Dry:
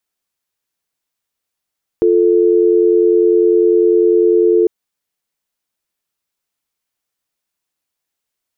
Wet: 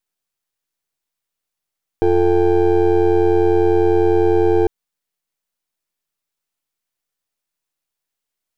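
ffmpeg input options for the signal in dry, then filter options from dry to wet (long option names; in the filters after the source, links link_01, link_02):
-f lavfi -i "aevalsrc='0.282*(sin(2*PI*350*t)+sin(2*PI*440*t))':duration=2.65:sample_rate=44100"
-af "aeval=exprs='if(lt(val(0),0),0.251*val(0),val(0))':channel_layout=same"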